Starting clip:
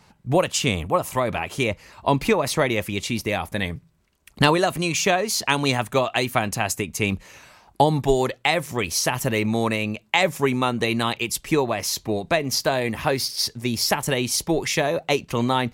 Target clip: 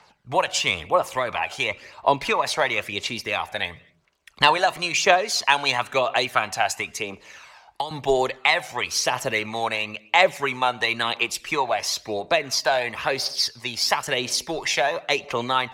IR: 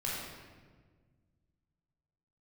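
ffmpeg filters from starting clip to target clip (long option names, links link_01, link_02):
-filter_complex "[0:a]acrossover=split=480 6600:gain=0.126 1 0.224[link_01][link_02][link_03];[link_01][link_02][link_03]amix=inputs=3:normalize=0,asettb=1/sr,asplit=3[link_04][link_05][link_06];[link_04]atrim=end=6.974[link_07];[link_05]atrim=start=6.97:end=7.91,asetpts=PTS-STARTPTS,afade=type=in:duration=0.004:curve=qsin,afade=type=out:start_time=0.936:duration=0.004:curve=qsin,acrossover=split=220|1100[link_08][link_09][link_10];[link_08]acompressor=threshold=-54dB:ratio=4[link_11];[link_09]acompressor=threshold=-33dB:ratio=4[link_12];[link_10]acompressor=threshold=-33dB:ratio=4[link_13];[link_11][link_12][link_13]amix=inputs=3:normalize=0[link_14];[link_06]atrim=start=7.906[link_15];[link_07][link_14]acrossfade=duration=0.004:curve1=hsin:curve2=qsin[link_16];[link_16][link_15]acrossfade=duration=0.004:curve1=qsin:curve2=hsin,asplit=2[link_17][link_18];[1:a]atrim=start_sample=2205,afade=type=out:start_time=0.31:duration=0.01,atrim=end_sample=14112[link_19];[link_18][link_19]afir=irnorm=-1:irlink=0,volume=-23dB[link_20];[link_17][link_20]amix=inputs=2:normalize=0,aphaser=in_gain=1:out_gain=1:delay=1.4:decay=0.44:speed=0.98:type=triangular,volume=1.5dB"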